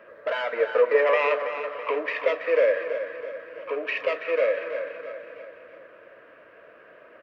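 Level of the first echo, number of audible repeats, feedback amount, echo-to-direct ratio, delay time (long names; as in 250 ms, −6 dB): −10.0 dB, 5, 50%, −9.0 dB, 329 ms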